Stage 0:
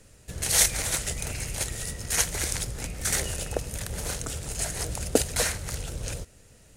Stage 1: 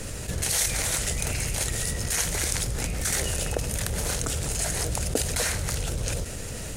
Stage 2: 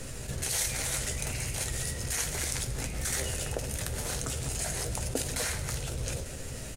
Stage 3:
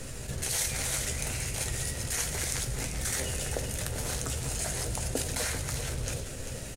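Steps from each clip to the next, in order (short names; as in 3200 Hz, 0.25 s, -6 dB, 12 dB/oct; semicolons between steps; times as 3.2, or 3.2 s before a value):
fast leveller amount 70%; gain -6 dB
doubler 15 ms -11 dB; on a send at -9 dB: reverb RT60 1.4 s, pre-delay 8 ms; on the sum: gain -6 dB
echo 0.392 s -9 dB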